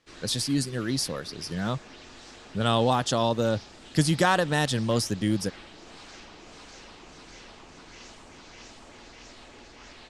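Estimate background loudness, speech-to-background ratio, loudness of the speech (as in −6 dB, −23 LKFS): −46.5 LKFS, 20.0 dB, −26.5 LKFS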